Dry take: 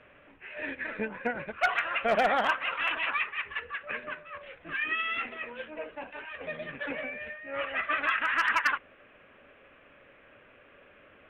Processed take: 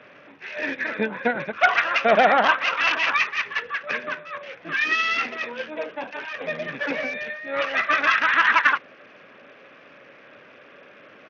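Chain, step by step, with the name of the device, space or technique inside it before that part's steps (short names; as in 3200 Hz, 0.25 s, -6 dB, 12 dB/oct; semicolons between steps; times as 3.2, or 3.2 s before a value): Bluetooth headset (HPF 130 Hz 24 dB/oct; downsampling 8000 Hz; gain +8.5 dB; SBC 64 kbps 48000 Hz)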